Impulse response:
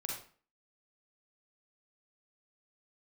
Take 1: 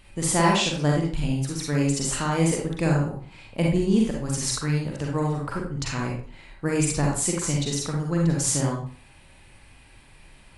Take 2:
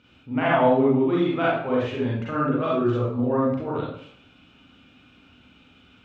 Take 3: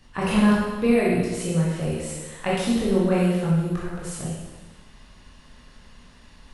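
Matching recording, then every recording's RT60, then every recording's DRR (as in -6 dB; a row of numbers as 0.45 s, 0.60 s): 1; 0.45 s, 0.65 s, 1.3 s; -2.0 dB, -6.5 dB, -6.5 dB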